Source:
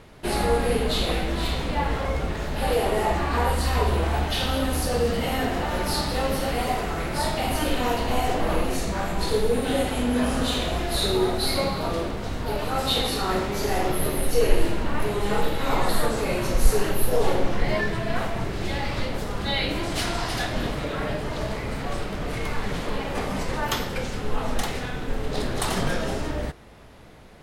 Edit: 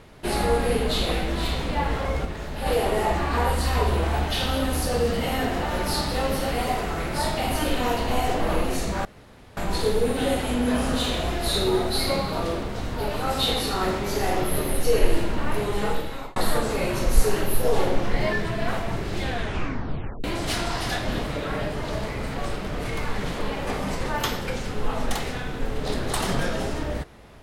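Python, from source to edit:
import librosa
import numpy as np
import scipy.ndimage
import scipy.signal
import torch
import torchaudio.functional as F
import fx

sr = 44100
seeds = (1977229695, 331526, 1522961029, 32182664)

y = fx.edit(x, sr, fx.clip_gain(start_s=2.25, length_s=0.41, db=-4.0),
    fx.insert_room_tone(at_s=9.05, length_s=0.52),
    fx.fade_out_span(start_s=15.06, length_s=0.78, curve='qsin'),
    fx.tape_stop(start_s=18.69, length_s=1.03), tone=tone)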